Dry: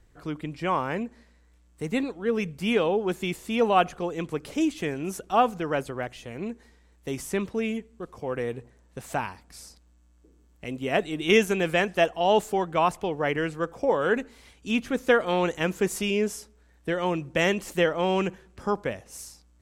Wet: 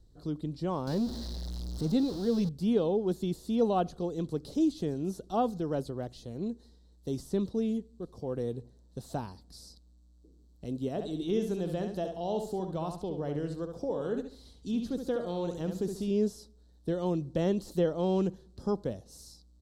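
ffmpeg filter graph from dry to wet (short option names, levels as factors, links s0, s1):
-filter_complex "[0:a]asettb=1/sr,asplit=3[s0][s1][s2];[s0]atrim=end=0.874[s3];[s1]atrim=start=0.87:end=2.49,asetpts=PTS-STARTPTS,afade=t=in:d=0.004:c=qsin,afade=t=out:st=1.616:d=0.004:c=qsin,aeval=exprs='val(0)+0.5*0.0299*sgn(val(0))':c=same,equalizer=f=5100:t=o:w=0.95:g=7,bandreject=f=440:w=12[s4];[s2]atrim=start=2.486[s5];[s3][s4]acrossfade=d=0.004:c1=hsin:c2=qsin[s6];[s6][s5]acrossfade=d=0.004:c1=qsin:c2=hsin,asettb=1/sr,asplit=3[s7][s8][s9];[s7]atrim=end=10.884[s10];[s8]atrim=start=10.88:end=16.11,asetpts=PTS-STARTPTS,afade=t=in:d=0.004:c=qsin,afade=t=out:st=5.226:d=0.004:c=qsin,acompressor=threshold=0.0224:ratio=1.5:attack=3.2:release=140:knee=1:detection=peak,asplit=2[s11][s12];[s12]adelay=69,lowpass=f=4900:p=1,volume=0.473,asplit=2[s13][s14];[s14]adelay=69,lowpass=f=4900:p=1,volume=0.31,asplit=2[s15][s16];[s16]adelay=69,lowpass=f=4900:p=1,volume=0.31,asplit=2[s17][s18];[s18]adelay=69,lowpass=f=4900:p=1,volume=0.31[s19];[s11][s13][s15][s17][s19]amix=inputs=5:normalize=0,atrim=end_sample=230643[s20];[s9]atrim=start=16.106[s21];[s10][s20]acrossfade=d=0.004:c1=hsin:c2=qsin[s22];[s22][s21]acrossfade=d=0.004:c1=qsin:c2=hsin,acrossover=split=3000[s23][s24];[s24]acompressor=threshold=0.00794:ratio=4:attack=1:release=60[s25];[s23][s25]amix=inputs=2:normalize=0,firequalizer=gain_entry='entry(190,0);entry(980,-12);entry(2300,-26);entry(4000,3);entry(6500,-7)':delay=0.05:min_phase=1"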